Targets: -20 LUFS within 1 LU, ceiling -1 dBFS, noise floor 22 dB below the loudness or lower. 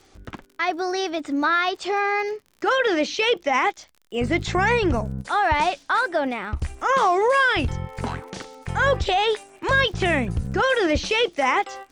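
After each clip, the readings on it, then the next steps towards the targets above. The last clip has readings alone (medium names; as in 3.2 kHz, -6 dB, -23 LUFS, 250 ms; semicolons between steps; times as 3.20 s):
tick rate 52 per s; loudness -22.0 LUFS; peak level -8.0 dBFS; loudness target -20.0 LUFS
-> de-click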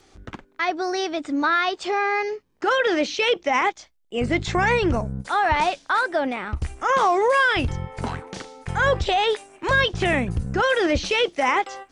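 tick rate 0.084 per s; loudness -22.0 LUFS; peak level -8.0 dBFS; loudness target -20.0 LUFS
-> trim +2 dB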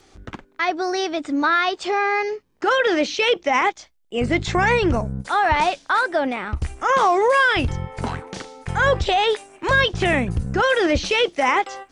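loudness -20.0 LUFS; peak level -6.0 dBFS; noise floor -58 dBFS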